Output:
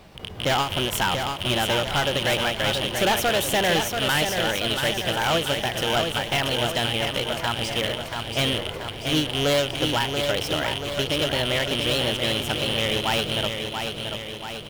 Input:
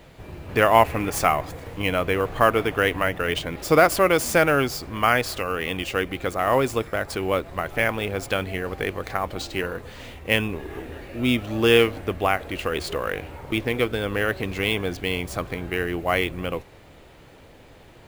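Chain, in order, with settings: rattling part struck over -33 dBFS, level -11 dBFS; wide varispeed 1.23×; overloaded stage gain 18 dB; feedback echo 0.684 s, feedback 57%, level -6 dB; ending taper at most 130 dB/s

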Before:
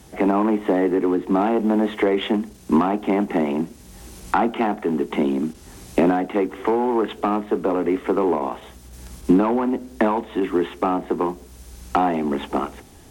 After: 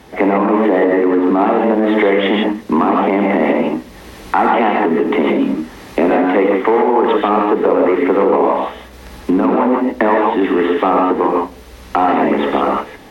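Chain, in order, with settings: non-linear reverb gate 0.18 s rising, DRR 0 dB; limiter -13 dBFS, peak gain reduction 10 dB; graphic EQ 250/500/1000/2000/4000/8000 Hz +4/+8/+7/+9/+5/-7 dB

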